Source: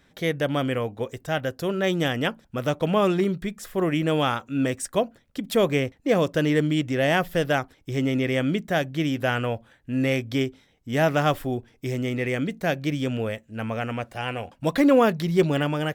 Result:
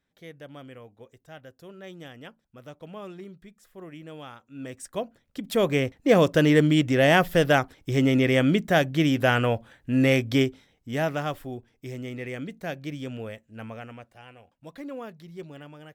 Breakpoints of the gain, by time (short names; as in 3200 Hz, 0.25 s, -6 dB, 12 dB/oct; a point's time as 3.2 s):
4.41 s -19 dB
4.85 s -9 dB
6.15 s +3 dB
10.39 s +3 dB
11.3 s -8.5 dB
13.63 s -8.5 dB
14.35 s -20 dB